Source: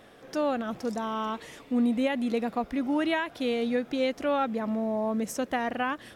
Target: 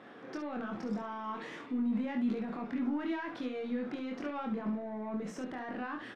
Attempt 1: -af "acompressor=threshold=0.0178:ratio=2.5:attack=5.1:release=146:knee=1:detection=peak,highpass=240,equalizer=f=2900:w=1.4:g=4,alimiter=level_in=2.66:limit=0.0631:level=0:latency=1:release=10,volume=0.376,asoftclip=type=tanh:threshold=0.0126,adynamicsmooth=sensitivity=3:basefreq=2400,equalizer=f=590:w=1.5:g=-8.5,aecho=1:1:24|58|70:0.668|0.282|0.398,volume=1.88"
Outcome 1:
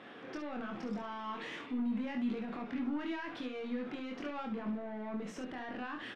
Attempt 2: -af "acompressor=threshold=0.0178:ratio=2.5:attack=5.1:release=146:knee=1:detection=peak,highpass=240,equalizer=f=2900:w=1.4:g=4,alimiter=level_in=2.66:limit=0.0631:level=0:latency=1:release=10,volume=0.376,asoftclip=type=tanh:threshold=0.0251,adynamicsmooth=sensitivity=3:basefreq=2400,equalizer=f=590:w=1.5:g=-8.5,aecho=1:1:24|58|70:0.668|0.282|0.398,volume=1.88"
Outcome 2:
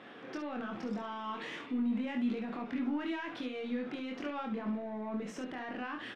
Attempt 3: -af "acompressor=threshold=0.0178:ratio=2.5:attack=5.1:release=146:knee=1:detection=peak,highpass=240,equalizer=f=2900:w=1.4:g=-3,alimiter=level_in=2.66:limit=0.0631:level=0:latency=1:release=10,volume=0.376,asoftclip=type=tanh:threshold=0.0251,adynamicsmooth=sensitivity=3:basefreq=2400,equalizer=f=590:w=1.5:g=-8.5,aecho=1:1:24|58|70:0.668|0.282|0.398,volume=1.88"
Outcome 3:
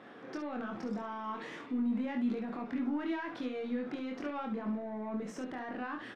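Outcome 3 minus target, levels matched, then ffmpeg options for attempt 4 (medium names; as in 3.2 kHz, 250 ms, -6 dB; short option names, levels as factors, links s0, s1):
compression: peak gain reduction +4 dB
-af "acompressor=threshold=0.0376:ratio=2.5:attack=5.1:release=146:knee=1:detection=peak,highpass=240,equalizer=f=2900:w=1.4:g=-3,alimiter=level_in=2.66:limit=0.0631:level=0:latency=1:release=10,volume=0.376,asoftclip=type=tanh:threshold=0.0251,adynamicsmooth=sensitivity=3:basefreq=2400,equalizer=f=590:w=1.5:g=-8.5,aecho=1:1:24|58|70:0.668|0.282|0.398,volume=1.88"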